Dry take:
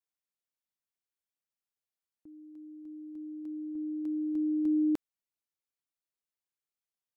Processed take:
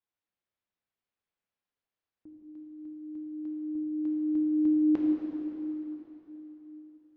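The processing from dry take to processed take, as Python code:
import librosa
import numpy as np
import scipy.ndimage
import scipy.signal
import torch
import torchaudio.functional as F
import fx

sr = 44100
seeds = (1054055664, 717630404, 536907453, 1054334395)

y = fx.air_absorb(x, sr, metres=240.0)
y = fx.rev_plate(y, sr, seeds[0], rt60_s=3.7, hf_ratio=0.9, predelay_ms=0, drr_db=-2.0)
y = F.gain(torch.from_numpy(y), 3.0).numpy()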